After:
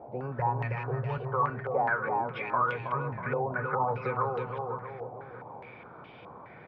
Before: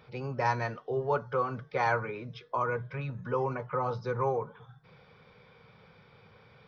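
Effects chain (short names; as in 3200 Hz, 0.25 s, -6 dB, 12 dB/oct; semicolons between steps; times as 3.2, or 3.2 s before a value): 0.39–1.18 resonant low shelf 190 Hz +8 dB, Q 3; compressor, threshold -31 dBFS, peak gain reduction 11 dB; feedback echo 0.321 s, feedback 54%, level -4 dB; band noise 140–940 Hz -54 dBFS; stepped low-pass 4.8 Hz 720–2900 Hz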